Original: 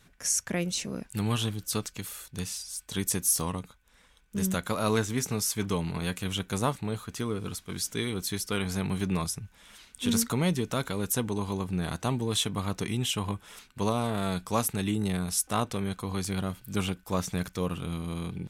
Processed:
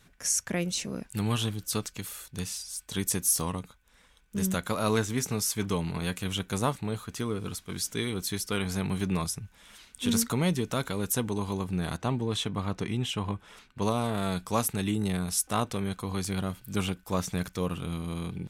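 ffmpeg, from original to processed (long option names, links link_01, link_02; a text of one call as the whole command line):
ffmpeg -i in.wav -filter_complex "[0:a]asettb=1/sr,asplit=3[link_01][link_02][link_03];[link_01]atrim=end=11.974[link_04];[link_02]atrim=start=11.97:end=13.82,asetpts=PTS-STARTPTS,afade=type=in:duration=0.004:curve=qsin,afade=type=out:start_time=1.846:duration=0.004:curve=qsin,aemphasis=mode=reproduction:type=50kf[link_05];[link_03]atrim=start=13.816[link_06];[link_04][link_05]acrossfade=duration=0.004:curve1=hsin:curve2=qsin[link_07];[link_07][link_06]acrossfade=duration=0.004:curve1=qsin:curve2=hsin" out.wav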